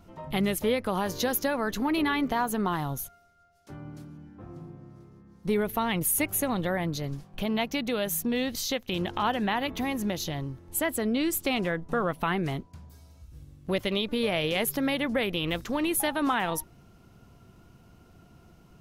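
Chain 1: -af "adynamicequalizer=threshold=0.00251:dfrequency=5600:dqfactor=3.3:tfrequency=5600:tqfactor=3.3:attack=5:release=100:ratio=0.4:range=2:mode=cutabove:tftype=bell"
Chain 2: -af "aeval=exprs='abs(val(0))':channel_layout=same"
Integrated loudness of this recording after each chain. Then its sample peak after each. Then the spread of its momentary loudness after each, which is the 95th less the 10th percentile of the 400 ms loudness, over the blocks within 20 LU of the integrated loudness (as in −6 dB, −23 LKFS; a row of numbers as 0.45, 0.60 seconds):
−28.5, −32.5 LKFS; −13.5, −13.5 dBFS; 14, 11 LU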